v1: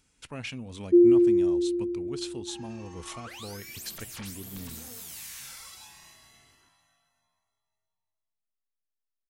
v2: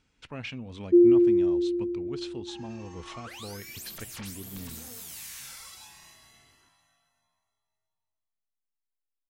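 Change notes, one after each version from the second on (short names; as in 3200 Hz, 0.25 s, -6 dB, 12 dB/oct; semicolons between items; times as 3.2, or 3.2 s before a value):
speech: add LPF 4200 Hz 12 dB/oct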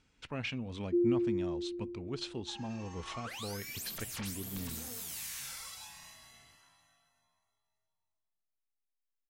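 first sound -12.0 dB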